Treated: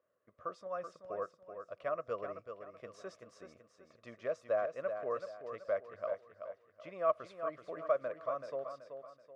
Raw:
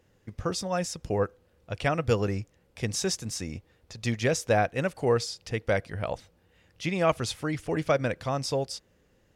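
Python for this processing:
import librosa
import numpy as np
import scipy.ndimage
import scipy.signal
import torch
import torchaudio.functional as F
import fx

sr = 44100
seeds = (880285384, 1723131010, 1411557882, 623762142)

p1 = fx.double_bandpass(x, sr, hz=840.0, octaves=0.88)
p2 = p1 + fx.echo_feedback(p1, sr, ms=380, feedback_pct=37, wet_db=-8, dry=0)
y = p2 * 10.0 ** (-3.0 / 20.0)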